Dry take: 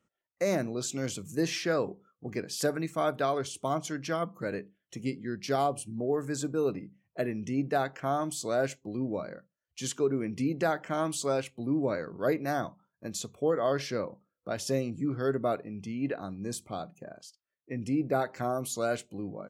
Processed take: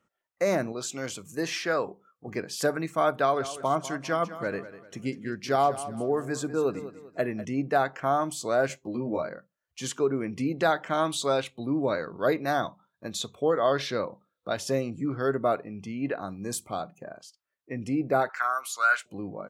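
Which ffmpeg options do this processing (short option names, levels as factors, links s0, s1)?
-filter_complex "[0:a]asettb=1/sr,asplit=3[s0][s1][s2];[s0]atrim=end=0.724[s3];[s1]atrim=start=0.72:end=2.28,asetpts=PTS-STARTPTS,afade=t=in:d=0.004:c=qsin,afade=t=out:st=1.556:d=0.004:c=qsin,lowshelf=f=390:g=-6.5[s4];[s2]atrim=start=2.276[s5];[s3][s4]acrossfade=d=0.004:c1=hsin:c2=qsin[s6];[s6][s5]acrossfade=d=0.004:c1=qsin:c2=hsin,asettb=1/sr,asplit=3[s7][s8][s9];[s7]atrim=end=3.104[s10];[s8]atrim=start=3.1:end=7.45,asetpts=PTS-STARTPTS,afade=t=in:d=0.004:c=qsin,afade=t=out:st=4.346:d=0.004:c=qsin,aecho=1:1:197|394|591|788:0.2|0.0738|0.0273|0.0101,atrim=end_sample=191835[s11];[s9]atrim=start=7.446[s12];[s10][s11]acrossfade=d=0.004:c1=hsin:c2=qsin[s13];[s13][s12]acrossfade=d=0.004:c1=qsin:c2=hsin,asettb=1/sr,asplit=3[s14][s15][s16];[s14]atrim=end=8.684[s17];[s15]atrim=start=8.68:end=9.29,asetpts=PTS-STARTPTS,afade=t=in:d=0.004:c=qsin,afade=t=out:st=0.606:d=0.004:c=qsin,asplit=2[s18][s19];[s19]adelay=13,volume=0.708[s20];[s18][s20]amix=inputs=2:normalize=0,atrim=end_sample=26901[s21];[s16]atrim=start=9.286[s22];[s17][s21]acrossfade=d=0.004:c1=hsin:c2=qsin[s23];[s23][s22]acrossfade=d=0.004:c1=qsin:c2=hsin,asettb=1/sr,asplit=3[s24][s25][s26];[s24]atrim=end=10.584[s27];[s25]atrim=start=10.58:end=14.57,asetpts=PTS-STARTPTS,afade=t=in:d=0.004:c=qsin,afade=t=out:st=3.986:d=0.004:c=qsin,equalizer=f=3700:w=5.6:g=13.5[s28];[s26]atrim=start=14.566[s29];[s27][s28]acrossfade=d=0.004:c1=hsin:c2=qsin[s30];[s30][s29]acrossfade=d=0.004:c1=qsin:c2=hsin,asettb=1/sr,asplit=3[s31][s32][s33];[s31]atrim=end=16.274[s34];[s32]atrim=start=16.27:end=16.81,asetpts=PTS-STARTPTS,afade=t=in:d=0.004:c=qsin,afade=t=out:st=0.536:d=0.004:c=qsin,highshelf=f=7400:g=10.5[s35];[s33]atrim=start=16.806[s36];[s34][s35]acrossfade=d=0.004:c1=hsin:c2=qsin[s37];[s37][s36]acrossfade=d=0.004:c1=qsin:c2=hsin,asettb=1/sr,asplit=3[s38][s39][s40];[s38]atrim=end=18.294[s41];[s39]atrim=start=18.29:end=19.06,asetpts=PTS-STARTPTS,afade=t=in:d=0.004:c=qsin,afade=t=out:st=0.766:d=0.004:c=qsin,highpass=f=1400:t=q:w=3.8[s42];[s40]atrim=start=19.056[s43];[s41][s42]acrossfade=d=0.004:c1=hsin:c2=qsin[s44];[s44][s43]acrossfade=d=0.004:c1=qsin:c2=hsin,equalizer=f=1100:t=o:w=2.1:g=6.5"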